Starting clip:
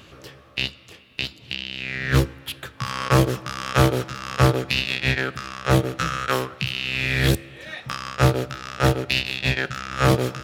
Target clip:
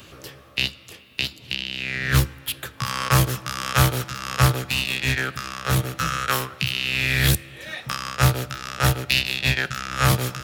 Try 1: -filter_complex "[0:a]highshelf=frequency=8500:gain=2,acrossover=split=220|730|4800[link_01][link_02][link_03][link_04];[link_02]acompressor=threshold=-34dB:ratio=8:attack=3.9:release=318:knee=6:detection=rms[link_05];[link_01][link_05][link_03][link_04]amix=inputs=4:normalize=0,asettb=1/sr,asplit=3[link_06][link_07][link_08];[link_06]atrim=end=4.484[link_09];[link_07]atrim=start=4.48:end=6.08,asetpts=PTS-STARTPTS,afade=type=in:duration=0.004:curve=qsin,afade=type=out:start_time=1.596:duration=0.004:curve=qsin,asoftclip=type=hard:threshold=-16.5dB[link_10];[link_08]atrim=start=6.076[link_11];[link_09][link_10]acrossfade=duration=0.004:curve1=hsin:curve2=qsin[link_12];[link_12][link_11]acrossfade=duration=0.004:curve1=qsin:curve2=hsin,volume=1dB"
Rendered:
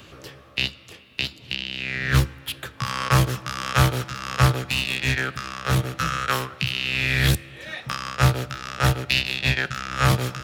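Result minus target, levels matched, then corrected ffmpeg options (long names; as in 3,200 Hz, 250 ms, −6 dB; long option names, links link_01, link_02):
8,000 Hz band −3.5 dB
-filter_complex "[0:a]highshelf=frequency=8500:gain=12.5,acrossover=split=220|730|4800[link_01][link_02][link_03][link_04];[link_02]acompressor=threshold=-34dB:ratio=8:attack=3.9:release=318:knee=6:detection=rms[link_05];[link_01][link_05][link_03][link_04]amix=inputs=4:normalize=0,asettb=1/sr,asplit=3[link_06][link_07][link_08];[link_06]atrim=end=4.484[link_09];[link_07]atrim=start=4.48:end=6.08,asetpts=PTS-STARTPTS,afade=type=in:duration=0.004:curve=qsin,afade=type=out:start_time=1.596:duration=0.004:curve=qsin,asoftclip=type=hard:threshold=-16.5dB[link_10];[link_08]atrim=start=6.076[link_11];[link_09][link_10]acrossfade=duration=0.004:curve1=hsin:curve2=qsin[link_12];[link_12][link_11]acrossfade=duration=0.004:curve1=qsin:curve2=hsin,volume=1dB"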